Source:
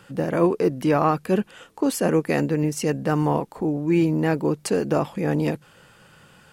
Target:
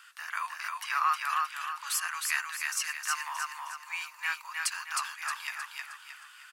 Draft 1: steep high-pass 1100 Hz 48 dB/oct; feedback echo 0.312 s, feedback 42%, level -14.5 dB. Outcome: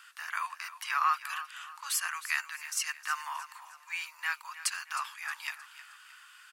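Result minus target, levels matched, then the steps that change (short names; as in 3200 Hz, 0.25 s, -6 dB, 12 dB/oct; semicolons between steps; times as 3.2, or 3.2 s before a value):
echo-to-direct -11.5 dB
change: feedback echo 0.312 s, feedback 42%, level -3 dB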